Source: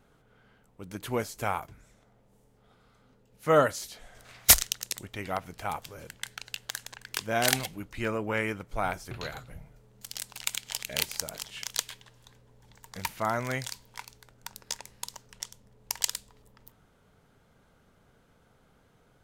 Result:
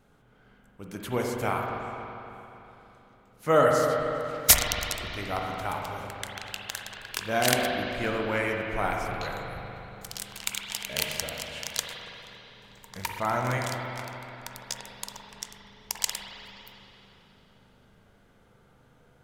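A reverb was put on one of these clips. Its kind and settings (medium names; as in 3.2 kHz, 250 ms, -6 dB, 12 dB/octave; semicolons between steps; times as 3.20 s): spring tank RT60 3.2 s, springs 40/56 ms, chirp 50 ms, DRR -0.5 dB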